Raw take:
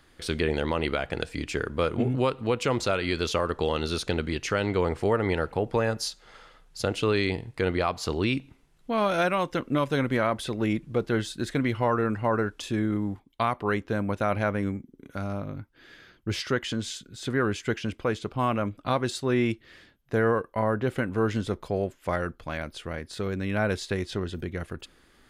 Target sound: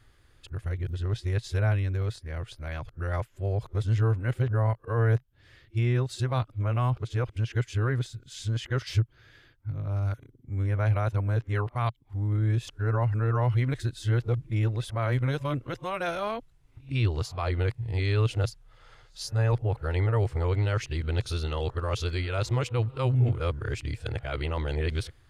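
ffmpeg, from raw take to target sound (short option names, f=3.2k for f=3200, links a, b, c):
-af "areverse,lowshelf=f=150:t=q:w=3:g=8.5,volume=-5.5dB"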